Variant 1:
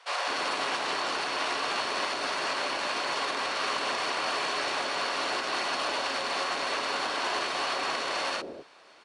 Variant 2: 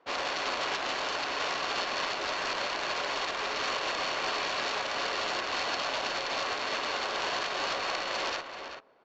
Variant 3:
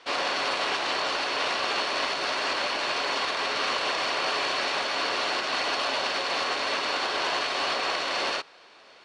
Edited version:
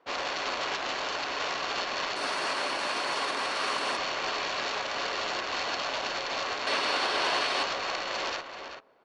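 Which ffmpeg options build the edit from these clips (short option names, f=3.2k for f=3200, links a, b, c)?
-filter_complex "[1:a]asplit=3[a][b][c];[a]atrim=end=2.162[d];[0:a]atrim=start=2.158:end=3.972[e];[b]atrim=start=3.968:end=6.672[f];[2:a]atrim=start=6.668:end=7.632[g];[c]atrim=start=7.628[h];[d][e]acrossfade=d=0.004:c1=hsin:c2=hsin[i];[i][f]acrossfade=d=0.004:c1=hsin:c2=hsin[j];[j][g]acrossfade=d=0.004:c1=hsin:c2=hsin[k];[k][h]acrossfade=d=0.004:c1=hsin:c2=hsin"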